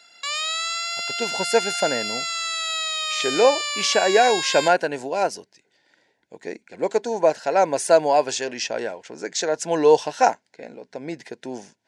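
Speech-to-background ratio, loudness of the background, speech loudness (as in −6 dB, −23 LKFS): 3.5 dB, −25.0 LKFS, −21.5 LKFS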